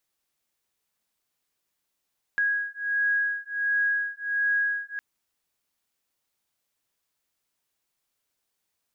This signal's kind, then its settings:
two tones that beat 1,650 Hz, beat 1.4 Hz, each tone −26.5 dBFS 2.61 s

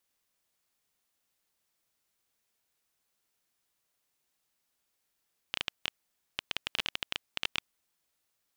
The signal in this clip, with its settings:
Geiger counter clicks 13 per second −12.5 dBFS 2.10 s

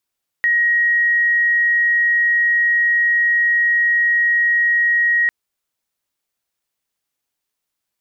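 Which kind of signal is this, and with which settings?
tone sine 1,890 Hz −12.5 dBFS 4.85 s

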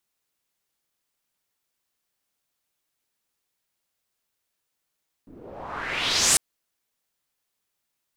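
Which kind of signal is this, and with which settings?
filter sweep on noise white, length 1.10 s lowpass, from 250 Hz, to 9,300 Hz, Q 2.7, exponential, gain ramp +15 dB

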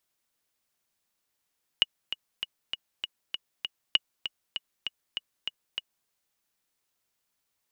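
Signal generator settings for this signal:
click track 197 BPM, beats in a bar 7, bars 2, 2,900 Hz, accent 11 dB −7 dBFS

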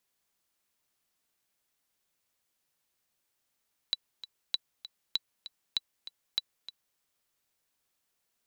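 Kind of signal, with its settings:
click track 196 BPM, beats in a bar 2, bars 5, 3,950 Hz, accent 14.5 dB −14.5 dBFS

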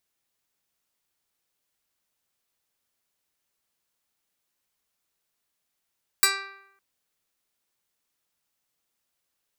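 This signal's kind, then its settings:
Karplus-Strong string G4, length 0.56 s, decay 0.82 s, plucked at 0.12, medium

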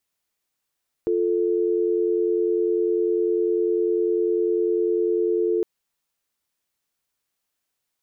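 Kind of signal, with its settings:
call progress tone dial tone, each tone −21.5 dBFS 4.56 s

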